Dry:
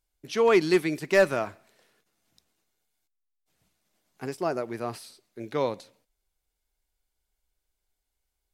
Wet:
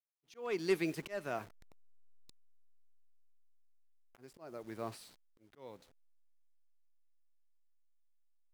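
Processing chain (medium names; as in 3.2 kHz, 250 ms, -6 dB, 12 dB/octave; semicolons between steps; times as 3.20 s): send-on-delta sampling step -46 dBFS; Doppler pass-by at 2.56 s, 16 m/s, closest 13 m; slow attack 493 ms; trim +1 dB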